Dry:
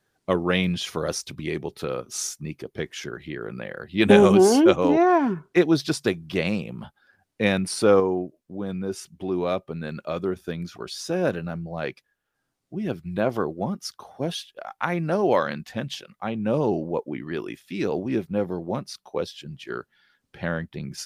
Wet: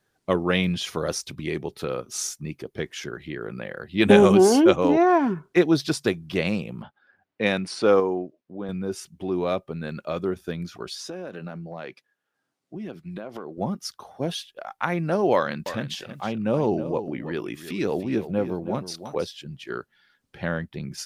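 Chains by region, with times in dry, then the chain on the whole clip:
6.82–8.69 s: high-pass 220 Hz 6 dB/octave + level-controlled noise filter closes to 2.7 kHz, open at -16 dBFS
10.95–13.58 s: high-pass 180 Hz + treble shelf 8.9 kHz -8 dB + compression 16:1, threshold -30 dBFS
15.34–19.27 s: upward compressor, threshold -28 dBFS + delay 320 ms -12 dB
whole clip: none

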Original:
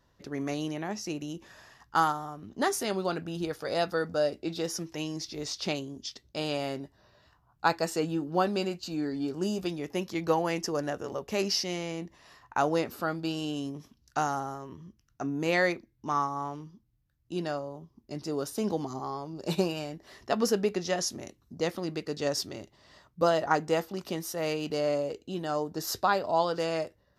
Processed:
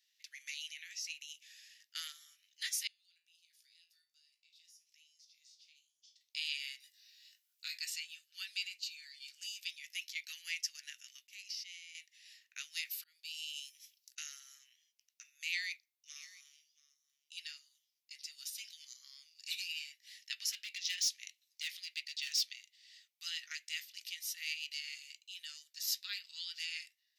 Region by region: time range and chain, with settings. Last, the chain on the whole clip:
2.87–6.21 s: amplifier tone stack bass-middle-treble 5-5-5 + compression 4:1, threshold -57 dBFS + feedback comb 56 Hz, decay 0.31 s, mix 80%
6.80–7.78 s: treble shelf 4 kHz +10 dB + compression 12:1, threshold -26 dBFS + doubling 20 ms -4 dB
11.27–11.95 s: gate -35 dBFS, range -16 dB + compression, threshold -39 dBFS
12.76–14.18 s: treble shelf 7.7 kHz +10.5 dB + slow attack 574 ms
15.48–17.37 s: peaking EQ 830 Hz -9 dB 2.7 oct + delay 678 ms -20 dB
20.52–22.54 s: peaking EQ 3.4 kHz +4.5 dB 1.6 oct + hard clipper -25.5 dBFS
whole clip: steep high-pass 2.1 kHz 48 dB/octave; dynamic bell 9 kHz, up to -5 dB, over -52 dBFS, Q 0.93; trim +1 dB

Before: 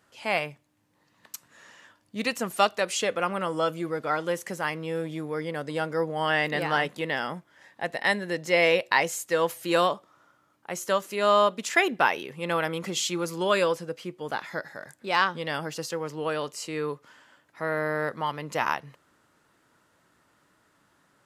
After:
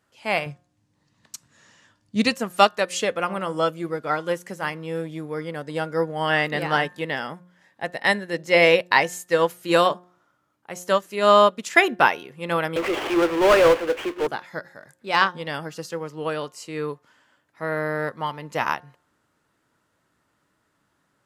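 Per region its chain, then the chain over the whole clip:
0.46–2.36 s: low-pass 7 kHz + tone controls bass +9 dB, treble +9 dB
12.76–14.27 s: CVSD coder 16 kbps + steep high-pass 300 Hz + power-law waveshaper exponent 0.5
whole clip: bass shelf 210 Hz +4 dB; de-hum 178.4 Hz, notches 10; upward expansion 1.5:1, over -40 dBFS; trim +6.5 dB

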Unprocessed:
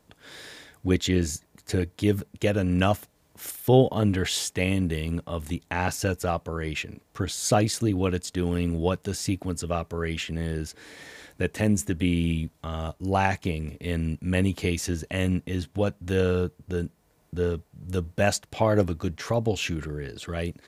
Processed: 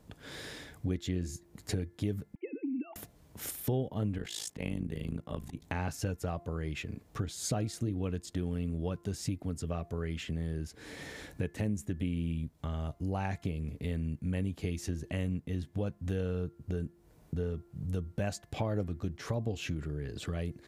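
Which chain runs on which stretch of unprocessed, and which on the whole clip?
2.35–2.96 s: formants replaced by sine waves + vowel filter u
4.18–5.62 s: high-pass 100 Hz + slow attack 111 ms + AM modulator 54 Hz, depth 80%
whole clip: bass shelf 360 Hz +9.5 dB; de-hum 345.7 Hz, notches 6; compression 3:1, threshold -33 dBFS; trim -2 dB

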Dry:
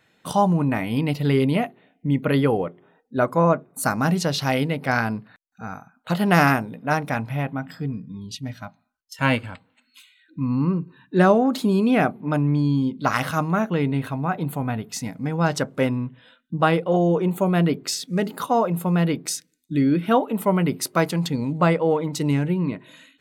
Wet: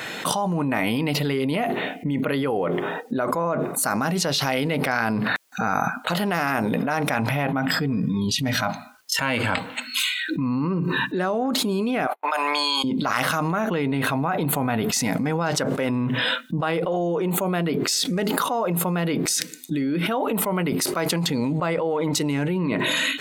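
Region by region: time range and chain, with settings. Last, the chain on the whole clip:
12.07–12.84 s: gate -35 dBFS, range -46 dB + high-pass 710 Hz 24 dB/octave + treble shelf 9.5 kHz +6.5 dB
whole clip: de-esser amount 40%; high-pass 350 Hz 6 dB/octave; level flattener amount 100%; trim -8.5 dB

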